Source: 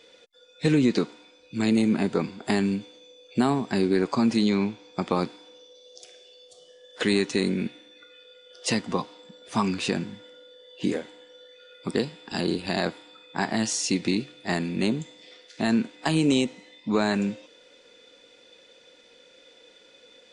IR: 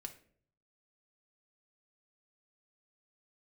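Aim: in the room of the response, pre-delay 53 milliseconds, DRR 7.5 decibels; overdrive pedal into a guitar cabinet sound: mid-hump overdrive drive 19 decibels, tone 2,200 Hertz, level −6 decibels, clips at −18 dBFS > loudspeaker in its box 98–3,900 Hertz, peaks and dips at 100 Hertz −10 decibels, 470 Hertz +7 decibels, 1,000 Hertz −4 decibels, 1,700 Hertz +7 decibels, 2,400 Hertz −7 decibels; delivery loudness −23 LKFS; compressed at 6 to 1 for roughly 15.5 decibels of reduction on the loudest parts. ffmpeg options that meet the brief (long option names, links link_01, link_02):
-filter_complex "[0:a]acompressor=threshold=-35dB:ratio=6,asplit=2[link_01][link_02];[1:a]atrim=start_sample=2205,adelay=53[link_03];[link_02][link_03]afir=irnorm=-1:irlink=0,volume=-3.5dB[link_04];[link_01][link_04]amix=inputs=2:normalize=0,asplit=2[link_05][link_06];[link_06]highpass=frequency=720:poles=1,volume=19dB,asoftclip=type=tanh:threshold=-18dB[link_07];[link_05][link_07]amix=inputs=2:normalize=0,lowpass=frequency=2200:poles=1,volume=-6dB,highpass=98,equalizer=frequency=100:width_type=q:width=4:gain=-10,equalizer=frequency=470:width_type=q:width=4:gain=7,equalizer=frequency=1000:width_type=q:width=4:gain=-4,equalizer=frequency=1700:width_type=q:width=4:gain=7,equalizer=frequency=2400:width_type=q:width=4:gain=-7,lowpass=frequency=3900:width=0.5412,lowpass=frequency=3900:width=1.3066,volume=11dB"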